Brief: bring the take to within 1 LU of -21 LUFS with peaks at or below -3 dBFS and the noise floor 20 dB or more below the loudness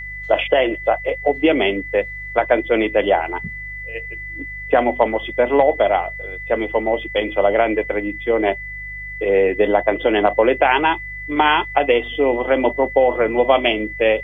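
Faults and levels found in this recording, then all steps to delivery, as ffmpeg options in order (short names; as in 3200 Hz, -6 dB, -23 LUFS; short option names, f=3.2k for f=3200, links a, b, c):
hum 50 Hz; harmonics up to 150 Hz; hum level -35 dBFS; steady tone 2000 Hz; tone level -29 dBFS; loudness -18.0 LUFS; peak -1.5 dBFS; loudness target -21.0 LUFS
-> -af "bandreject=f=50:t=h:w=4,bandreject=f=100:t=h:w=4,bandreject=f=150:t=h:w=4"
-af "bandreject=f=2k:w=30"
-af "volume=-3dB"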